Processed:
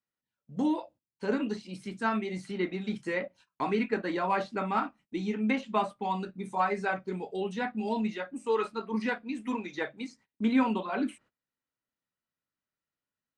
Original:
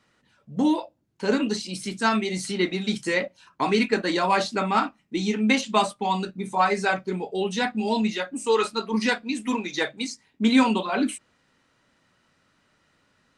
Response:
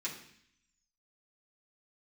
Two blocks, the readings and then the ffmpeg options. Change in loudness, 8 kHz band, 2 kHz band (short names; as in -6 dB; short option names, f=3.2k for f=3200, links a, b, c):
-7.0 dB, under -15 dB, -8.5 dB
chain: -filter_complex "[0:a]agate=range=-23dB:threshold=-47dB:ratio=16:detection=peak,acrossover=split=2600[a][b];[b]acompressor=threshold=-49dB:ratio=6[c];[a][c]amix=inputs=2:normalize=0,volume=-6.5dB"